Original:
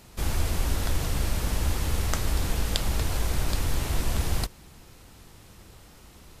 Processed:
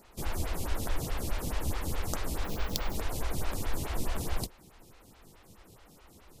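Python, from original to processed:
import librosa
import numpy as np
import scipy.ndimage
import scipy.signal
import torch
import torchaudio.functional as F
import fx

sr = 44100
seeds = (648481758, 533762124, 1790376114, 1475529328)

y = fx.sample_hold(x, sr, seeds[0], rate_hz=9100.0, jitter_pct=0, at=(2.44, 2.95))
y = fx.stagger_phaser(y, sr, hz=4.7)
y = F.gain(torch.from_numpy(y), -1.5).numpy()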